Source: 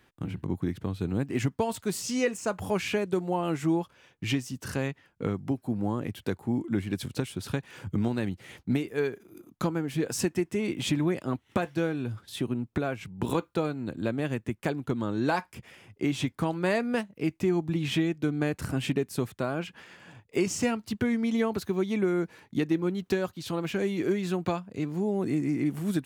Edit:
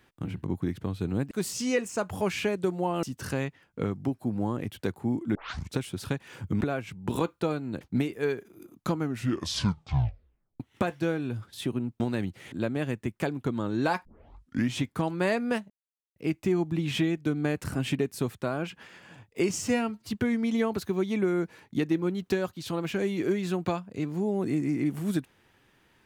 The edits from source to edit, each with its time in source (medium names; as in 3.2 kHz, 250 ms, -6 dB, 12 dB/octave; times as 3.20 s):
1.31–1.80 s: delete
3.52–4.46 s: delete
6.78 s: tape start 0.41 s
8.04–8.56 s: swap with 12.75–13.95 s
9.67 s: tape stop 1.68 s
15.48 s: tape start 0.72 s
17.13 s: insert silence 0.46 s
20.56–20.90 s: stretch 1.5×